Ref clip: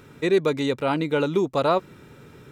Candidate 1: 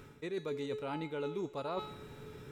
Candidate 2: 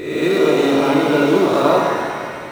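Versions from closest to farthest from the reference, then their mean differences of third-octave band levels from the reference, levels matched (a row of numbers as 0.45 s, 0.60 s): 1, 2; 6.0 dB, 9.5 dB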